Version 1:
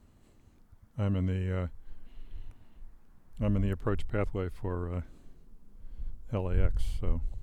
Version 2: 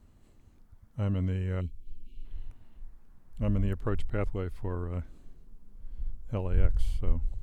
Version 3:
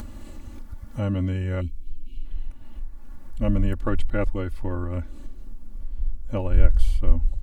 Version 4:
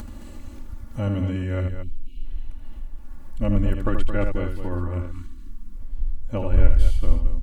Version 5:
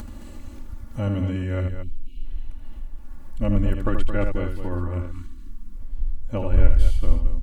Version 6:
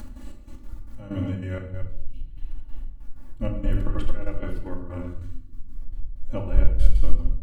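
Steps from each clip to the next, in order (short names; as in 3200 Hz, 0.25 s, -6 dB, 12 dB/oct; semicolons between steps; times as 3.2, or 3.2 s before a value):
spectral gain 1.61–2.25, 440–2200 Hz -29 dB; low shelf 80 Hz +5.5 dB; gain -1.5 dB
comb 3.5 ms, depth 80%; upward compressor, threshold -28 dBFS; gain +4.5 dB
loudspeakers at several distances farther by 27 m -7 dB, 75 m -9 dB; spectral delete 5.11–5.77, 360–900 Hz
nothing audible
step gate "x.xx..x.xx.x..xx" 190 bpm -12 dB; shoebox room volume 1000 m³, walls furnished, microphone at 2.4 m; gain -6 dB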